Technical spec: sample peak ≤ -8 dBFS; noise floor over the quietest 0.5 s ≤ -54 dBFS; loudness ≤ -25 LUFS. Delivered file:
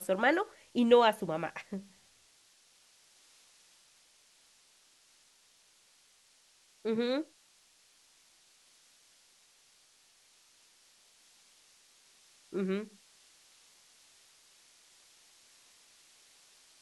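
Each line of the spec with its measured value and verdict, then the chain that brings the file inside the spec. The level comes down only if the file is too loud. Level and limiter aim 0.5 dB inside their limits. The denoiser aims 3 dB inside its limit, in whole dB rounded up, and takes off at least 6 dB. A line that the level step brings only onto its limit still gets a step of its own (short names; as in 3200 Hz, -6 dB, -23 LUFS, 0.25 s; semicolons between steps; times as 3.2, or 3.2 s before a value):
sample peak -11.5 dBFS: OK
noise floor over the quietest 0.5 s -66 dBFS: OK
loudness -31.0 LUFS: OK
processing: none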